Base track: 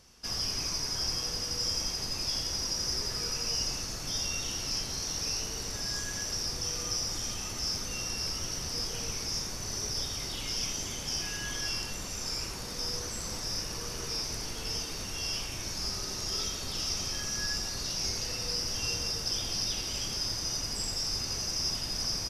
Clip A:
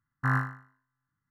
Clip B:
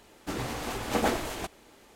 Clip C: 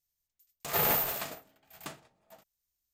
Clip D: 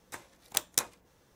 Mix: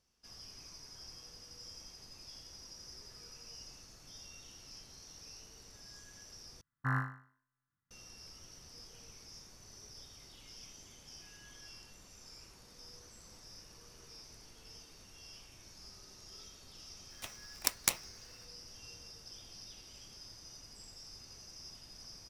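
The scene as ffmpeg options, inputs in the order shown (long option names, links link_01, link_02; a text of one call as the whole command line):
ffmpeg -i bed.wav -i cue0.wav -i cue1.wav -i cue2.wav -i cue3.wav -filter_complex "[0:a]volume=-19.5dB[link_01];[4:a]aeval=exprs='val(0)*sgn(sin(2*PI*1600*n/s))':channel_layout=same[link_02];[link_01]asplit=2[link_03][link_04];[link_03]atrim=end=6.614[link_05];[1:a]atrim=end=1.3,asetpts=PTS-STARTPTS,volume=-7dB[link_06];[link_04]atrim=start=7.906[link_07];[link_02]atrim=end=1.35,asetpts=PTS-STARTPTS,volume=-2dB,afade=type=in:duration=0.004:curve=hsin,afade=type=out:start_time=1.346:duration=0.004:curve=hsin,adelay=17100[link_08];[link_05][link_06]acrossfade=duration=0.004:curve1=hsin:curve2=hsin[link_09];[link_09][link_07]acrossfade=duration=0.004:curve1=hsin:curve2=hsin[link_10];[link_10][link_08]amix=inputs=2:normalize=0" out.wav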